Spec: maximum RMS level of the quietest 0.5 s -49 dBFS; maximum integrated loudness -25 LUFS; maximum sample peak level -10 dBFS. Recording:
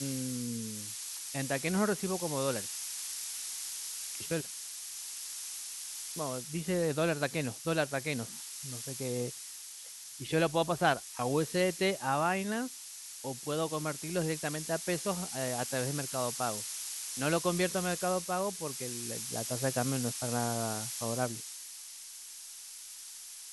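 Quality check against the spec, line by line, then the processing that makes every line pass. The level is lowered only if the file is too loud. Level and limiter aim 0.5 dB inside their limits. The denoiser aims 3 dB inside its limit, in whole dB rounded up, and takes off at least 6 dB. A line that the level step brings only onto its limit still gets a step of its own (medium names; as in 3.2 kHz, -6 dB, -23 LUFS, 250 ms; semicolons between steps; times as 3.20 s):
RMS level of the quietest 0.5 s -47 dBFS: fail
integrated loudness -34.0 LUFS: pass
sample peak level -13.0 dBFS: pass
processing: noise reduction 6 dB, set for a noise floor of -47 dBFS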